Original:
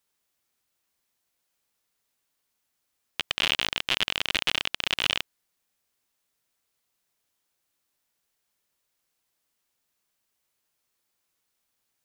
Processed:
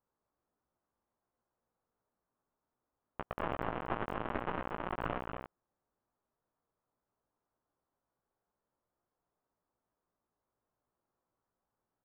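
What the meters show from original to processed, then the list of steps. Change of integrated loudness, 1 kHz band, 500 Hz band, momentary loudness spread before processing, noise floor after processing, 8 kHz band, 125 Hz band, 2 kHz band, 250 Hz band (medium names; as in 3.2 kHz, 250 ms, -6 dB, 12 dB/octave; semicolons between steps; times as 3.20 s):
-13.0 dB, 0.0 dB, +2.0 dB, 10 LU, under -85 dBFS, under -35 dB, +1.5 dB, -15.5 dB, +2.0 dB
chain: low-pass 1.2 kHz 24 dB/octave; doubling 17 ms -7 dB; delay 235 ms -5.5 dB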